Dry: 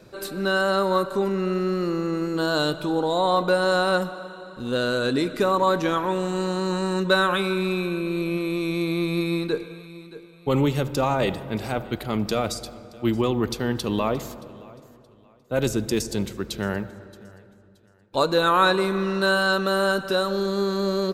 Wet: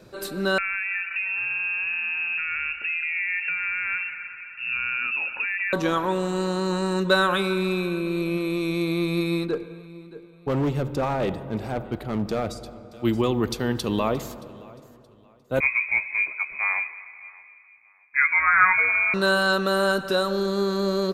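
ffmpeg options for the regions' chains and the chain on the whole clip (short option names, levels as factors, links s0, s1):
-filter_complex "[0:a]asettb=1/sr,asplit=3[s0][s1][s2];[s0]atrim=end=0.584[s3];[s1]atrim=start=0.58:end=5.73,asetpts=PTS-STARTPTS,afade=t=in:d=0.004:c=qsin,afade=t=out:st=5.146:d=0.004:c=qsin,acompressor=threshold=0.0708:ratio=6:attack=3.2:release=140:knee=1:detection=peak,lowpass=f=2500:t=q:w=0.5098,lowpass=f=2500:t=q:w=0.6013,lowpass=f=2500:t=q:w=0.9,lowpass=f=2500:t=q:w=2.563,afreqshift=-2900[s4];[s2]atrim=start=5.726[s5];[s3][s4]acrossfade=d=0.004:c1=hsin:c2=qsin[s6];[s6][s5]acrossfade=d=0.004:c1=qsin:c2=hsin,asettb=1/sr,asplit=3[s7][s8][s9];[s7]atrim=end=9.454[s10];[s8]atrim=start=9.45:end=12.92,asetpts=PTS-STARTPTS,afade=t=in:d=0.004:c=qsin,afade=t=out:st=3.466:d=0.004:c=qsin,highshelf=f=2200:g=-11,volume=9.44,asoftclip=hard,volume=0.106[s11];[s9]atrim=start=12.916[s12];[s10][s11]acrossfade=d=0.004:c1=hsin:c2=qsin[s13];[s13][s12]acrossfade=d=0.004:c1=qsin:c2=hsin,asettb=1/sr,asplit=3[s14][s15][s16];[s14]atrim=end=15.604[s17];[s15]atrim=start=15.6:end=19.14,asetpts=PTS-STARTPTS,afade=t=in:d=0.004:c=qsin,afade=t=out:st=3.536:d=0.004:c=qsin,lowpass=f=2200:t=q:w=0.5098,lowpass=f=2200:t=q:w=0.6013,lowpass=f=2200:t=q:w=0.9,lowpass=f=2200:t=q:w=2.563,afreqshift=-2600,asplit=2[s18][s19];[s19]adelay=15,volume=0.447[s20];[s18][s20]amix=inputs=2:normalize=0,atrim=end_sample=156114[s21];[s16]atrim=start=19.136[s22];[s17][s21]acrossfade=d=0.004:c1=hsin:c2=qsin[s23];[s23][s22]acrossfade=d=0.004:c1=qsin:c2=hsin"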